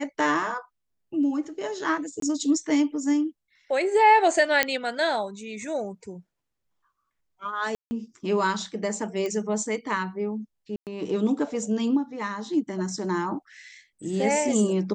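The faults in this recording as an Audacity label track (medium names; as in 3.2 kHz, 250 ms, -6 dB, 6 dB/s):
2.200000	2.220000	dropout 23 ms
4.630000	4.630000	pop -4 dBFS
7.750000	7.910000	dropout 160 ms
9.260000	9.260000	pop -18 dBFS
10.760000	10.870000	dropout 108 ms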